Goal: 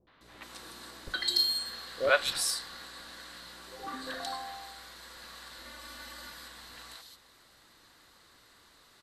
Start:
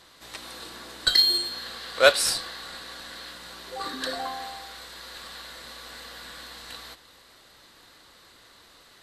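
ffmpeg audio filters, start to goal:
-filter_complex "[0:a]asettb=1/sr,asplit=3[a][b][c];[a]atrim=end=5.584[d];[b]atrim=start=5.58:end=6.27,asetpts=PTS-STARTPTS,afade=t=in:d=0.004:c=qsin,afade=t=out:st=0.686:d=0.004:c=qsin,aecho=1:1:3.4:0.93,atrim=end_sample=30429[e];[c]atrim=start=6.266[f];[d][e]acrossfade=d=0.004:c1=hsin:c2=qsin[g];[g][f]acrossfade=d=0.004:c1=qsin:c2=hsin,acrossover=split=530|3200[h][i][j];[i]adelay=70[k];[j]adelay=210[l];[h][k][l]amix=inputs=3:normalize=0,volume=-5dB"

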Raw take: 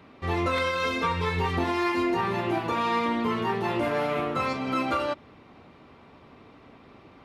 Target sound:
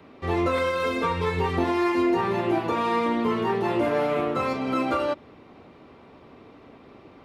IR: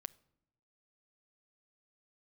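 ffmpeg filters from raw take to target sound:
-filter_complex "[0:a]acrossover=split=310|550|2100[a][b][c][d];[b]acontrast=82[e];[d]asoftclip=type=tanh:threshold=-35.5dB[f];[a][e][c][f]amix=inputs=4:normalize=0"

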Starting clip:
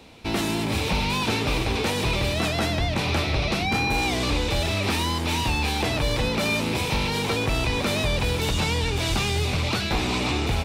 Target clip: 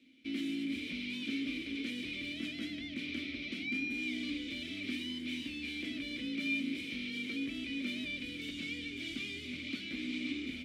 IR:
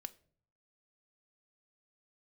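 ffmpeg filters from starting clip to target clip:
-filter_complex "[0:a]aeval=exprs='sgn(val(0))*max(abs(val(0))-0.00112,0)':c=same,asplit=3[a][b][c];[a]bandpass=f=270:t=q:w=8,volume=0dB[d];[b]bandpass=f=2.29k:t=q:w=8,volume=-6dB[e];[c]bandpass=f=3.01k:t=q:w=8,volume=-9dB[f];[d][e][f]amix=inputs=3:normalize=0,aemphasis=mode=production:type=50kf[g];[1:a]atrim=start_sample=2205[h];[g][h]afir=irnorm=-1:irlink=0"

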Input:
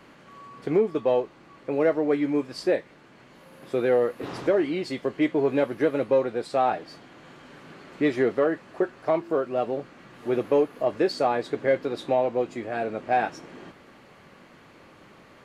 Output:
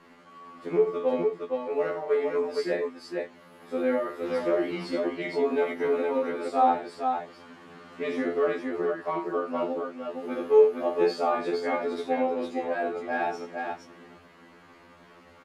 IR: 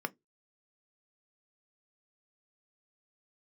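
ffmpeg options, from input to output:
-filter_complex "[0:a]aecho=1:1:44|83|464:0.447|0.282|0.668,asplit=2[a][b];[1:a]atrim=start_sample=2205[c];[b][c]afir=irnorm=-1:irlink=0,volume=-12.5dB[d];[a][d]amix=inputs=2:normalize=0,afftfilt=real='re*2*eq(mod(b,4),0)':imag='im*2*eq(mod(b,4),0)':win_size=2048:overlap=0.75,volume=-4dB"

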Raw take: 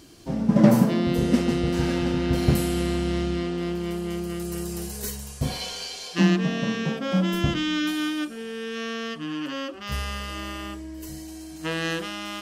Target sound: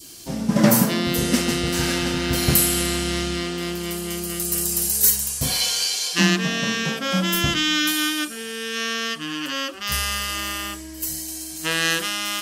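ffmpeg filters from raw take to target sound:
-af "crystalizer=i=6:c=0,adynamicequalizer=threshold=0.02:dfrequency=1500:dqfactor=1.1:tfrequency=1500:tqfactor=1.1:attack=5:release=100:ratio=0.375:range=2:mode=boostabove:tftype=bell,volume=-1dB"

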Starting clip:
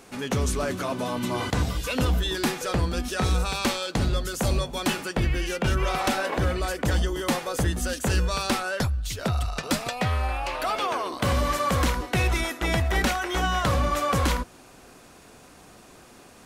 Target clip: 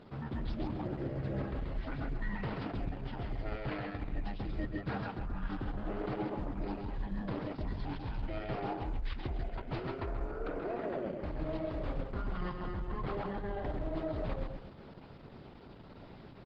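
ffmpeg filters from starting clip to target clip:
-filter_complex "[0:a]aemphasis=mode=reproduction:type=75kf,areverse,acompressor=threshold=-34dB:ratio=8,areverse,asetrate=24046,aresample=44100,atempo=1.83401,asplit=2[a][b];[b]aecho=0:1:133|266|399|532:0.631|0.189|0.0568|0.017[c];[a][c]amix=inputs=2:normalize=0,aresample=11025,aresample=44100" -ar 48000 -c:a libopus -b:a 10k

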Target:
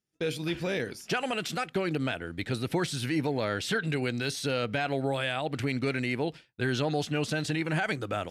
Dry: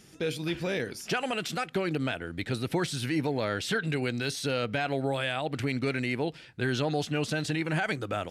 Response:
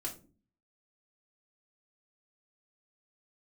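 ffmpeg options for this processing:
-af "agate=range=-33dB:threshold=-36dB:ratio=3:detection=peak"

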